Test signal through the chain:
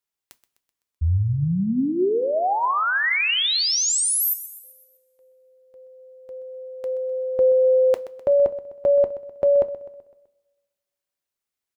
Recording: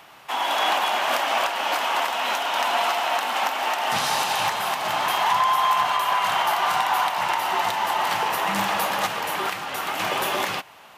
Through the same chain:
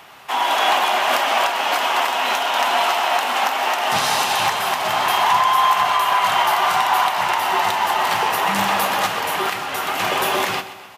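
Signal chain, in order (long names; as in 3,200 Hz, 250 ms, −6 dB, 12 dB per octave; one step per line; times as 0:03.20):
on a send: repeating echo 127 ms, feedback 50%, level −14.5 dB
on the sum: coupled-rooms reverb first 0.2 s, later 1.5 s, from −21 dB, DRR 10.5 dB
level +4 dB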